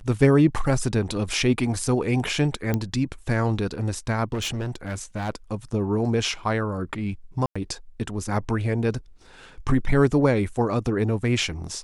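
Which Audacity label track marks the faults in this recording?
2.740000	2.740000	pop -11 dBFS
4.330000	5.300000	clipped -24.5 dBFS
7.460000	7.550000	gap 95 ms

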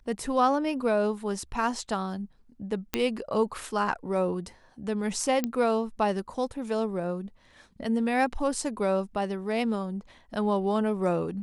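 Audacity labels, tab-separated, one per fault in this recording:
2.940000	2.940000	pop -10 dBFS
5.440000	5.440000	pop -14 dBFS

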